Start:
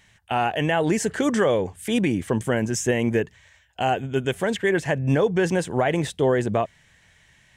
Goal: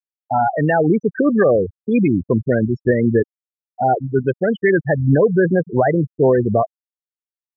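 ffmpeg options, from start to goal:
ffmpeg -i in.wav -af "acontrast=88,afftfilt=real='re*gte(hypot(re,im),0.398)':imag='im*gte(hypot(re,im),0.398)':win_size=1024:overlap=0.75,lowpass=frequency=2600:width=0.5412,lowpass=frequency=2600:width=1.3066" out.wav

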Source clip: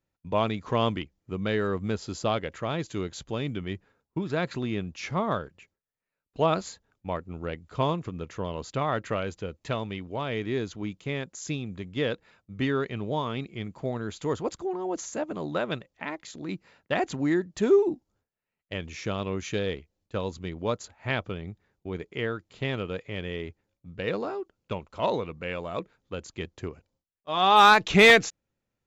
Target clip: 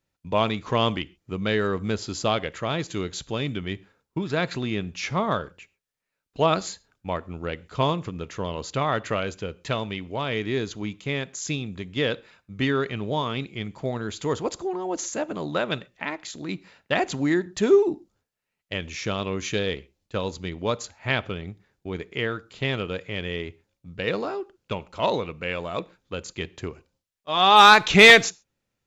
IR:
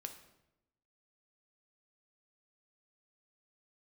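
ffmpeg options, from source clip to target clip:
-filter_complex "[0:a]equalizer=frequency=4500:width_type=o:width=2.8:gain=5,asplit=2[link_01][link_02];[1:a]atrim=start_sample=2205,atrim=end_sample=6174[link_03];[link_02][link_03]afir=irnorm=-1:irlink=0,volume=-6.5dB[link_04];[link_01][link_04]amix=inputs=2:normalize=0"

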